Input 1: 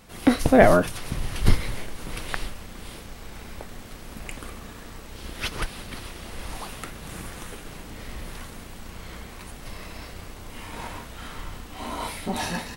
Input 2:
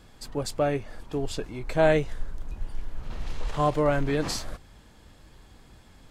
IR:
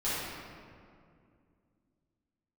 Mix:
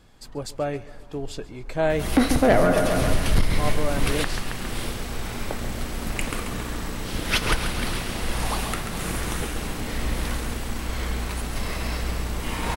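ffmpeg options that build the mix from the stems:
-filter_complex "[0:a]acontrast=90,aeval=exprs='val(0)+0.0158*(sin(2*PI*60*n/s)+sin(2*PI*2*60*n/s)/2+sin(2*PI*3*60*n/s)/3+sin(2*PI*4*60*n/s)/4+sin(2*PI*5*60*n/s)/5)':c=same,adelay=1900,volume=1.06,asplit=3[s0][s1][s2];[s1]volume=0.0944[s3];[s2]volume=0.398[s4];[1:a]volume=0.794,asplit=2[s5][s6];[s6]volume=0.106[s7];[2:a]atrim=start_sample=2205[s8];[s3][s8]afir=irnorm=-1:irlink=0[s9];[s4][s7]amix=inputs=2:normalize=0,aecho=0:1:136|272|408|544|680|816|952|1088|1224:1|0.58|0.336|0.195|0.113|0.0656|0.0381|0.0221|0.0128[s10];[s0][s5][s9][s10]amix=inputs=4:normalize=0,alimiter=limit=0.335:level=0:latency=1:release=387"

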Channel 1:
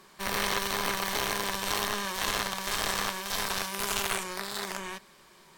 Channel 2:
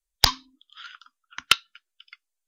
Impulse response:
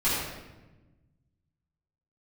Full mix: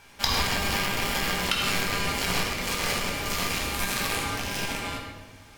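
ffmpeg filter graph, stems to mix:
-filter_complex "[0:a]aeval=exprs='val(0)*sin(2*PI*1200*n/s)':c=same,volume=1.19,asplit=2[s0][s1];[s1]volume=0.376[s2];[1:a]volume=0.501,asplit=2[s3][s4];[s4]volume=0.376[s5];[2:a]atrim=start_sample=2205[s6];[s2][s5]amix=inputs=2:normalize=0[s7];[s7][s6]afir=irnorm=-1:irlink=0[s8];[s0][s3][s8]amix=inputs=3:normalize=0,alimiter=limit=0.237:level=0:latency=1:release=186"

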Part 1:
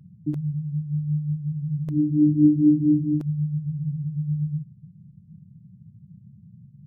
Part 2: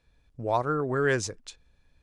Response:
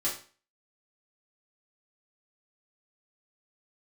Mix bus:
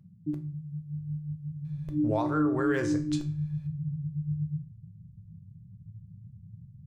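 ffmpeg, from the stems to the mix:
-filter_complex "[0:a]asubboost=boost=10:cutoff=78,volume=0.398,asplit=2[s0][s1];[s1]volume=0.316[s2];[1:a]deesser=0.9,adelay=1650,volume=1,asplit=2[s3][s4];[s4]volume=0.398[s5];[2:a]atrim=start_sample=2205[s6];[s2][s5]amix=inputs=2:normalize=0[s7];[s7][s6]afir=irnorm=-1:irlink=0[s8];[s0][s3][s8]amix=inputs=3:normalize=0,alimiter=limit=0.126:level=0:latency=1:release=333"

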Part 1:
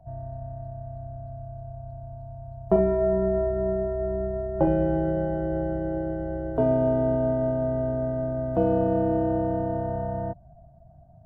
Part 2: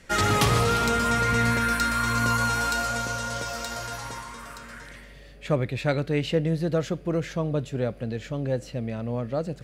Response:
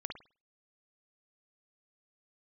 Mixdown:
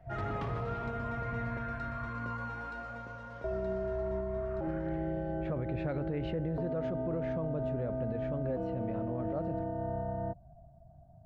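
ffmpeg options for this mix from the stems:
-filter_complex "[0:a]acompressor=threshold=0.0562:ratio=6,bandreject=f=520:w=12,volume=0.596,asplit=3[s0][s1][s2];[s0]atrim=end=2.1,asetpts=PTS-STARTPTS,afade=t=out:st=2.096:d=0.004:c=hsin[s3];[s1]atrim=start=2.1:end=3.44,asetpts=PTS-STARTPTS,volume=0[s4];[s2]atrim=start=3.44,asetpts=PTS-STARTPTS,afade=t=in:d=0.004:c=hsin[s5];[s3][s4][s5]concat=n=3:v=0:a=1[s6];[1:a]lowpass=1500,volume=0.631,afade=t=in:st=4.26:d=0.6:silence=0.354813[s7];[s6][s7]amix=inputs=2:normalize=0,alimiter=level_in=1.33:limit=0.0631:level=0:latency=1:release=53,volume=0.75"

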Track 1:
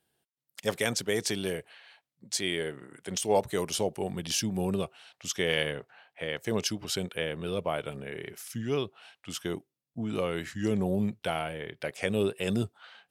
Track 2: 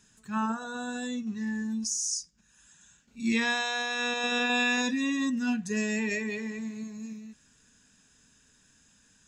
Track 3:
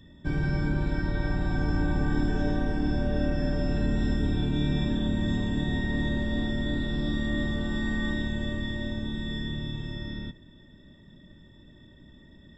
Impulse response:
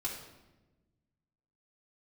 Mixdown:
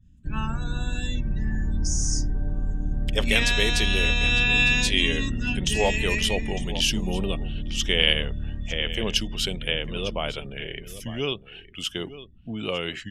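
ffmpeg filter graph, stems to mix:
-filter_complex "[0:a]adelay=2500,volume=1.06,asplit=2[s0][s1];[s1]volume=0.2[s2];[1:a]adynamicequalizer=threshold=0.00631:dfrequency=1700:dqfactor=0.7:tfrequency=1700:tqfactor=0.7:attack=5:release=100:ratio=0.375:range=2.5:mode=boostabove:tftype=highshelf,volume=0.562[s3];[2:a]aemphasis=mode=reproduction:type=riaa,volume=0.168,asplit=2[s4][s5];[s5]volume=0.473[s6];[s2][s6]amix=inputs=2:normalize=0,aecho=0:1:904:1[s7];[s0][s3][s4][s7]amix=inputs=4:normalize=0,afftdn=nr=17:nf=-51,equalizer=f=2900:t=o:w=0.71:g=13"

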